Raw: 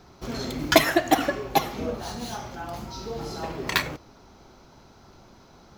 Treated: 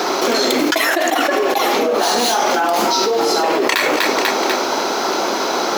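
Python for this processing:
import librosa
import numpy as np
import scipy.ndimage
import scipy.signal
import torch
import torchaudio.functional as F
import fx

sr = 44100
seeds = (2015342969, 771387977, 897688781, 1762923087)

p1 = scipy.signal.sosfilt(scipy.signal.butter(4, 320.0, 'highpass', fs=sr, output='sos'), x)
p2 = p1 + fx.echo_feedback(p1, sr, ms=246, feedback_pct=50, wet_db=-23.5, dry=0)
p3 = fx.env_flatten(p2, sr, amount_pct=100)
y = p3 * 10.0 ** (-4.0 / 20.0)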